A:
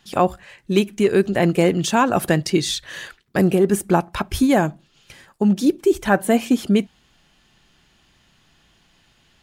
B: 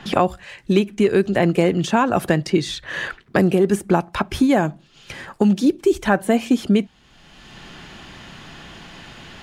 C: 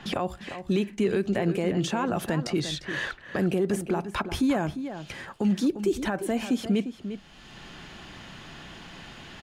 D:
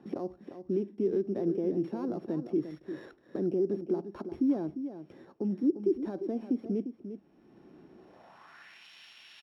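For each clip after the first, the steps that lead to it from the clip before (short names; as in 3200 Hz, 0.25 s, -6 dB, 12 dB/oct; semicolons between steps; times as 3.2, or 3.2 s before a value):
high shelf 9500 Hz -11 dB; three-band squash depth 70%
limiter -12.5 dBFS, peak gain reduction 11 dB; outdoor echo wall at 60 m, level -10 dB; gain -4.5 dB
sample sorter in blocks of 8 samples; band-pass sweep 330 Hz -> 3000 Hz, 7.95–8.86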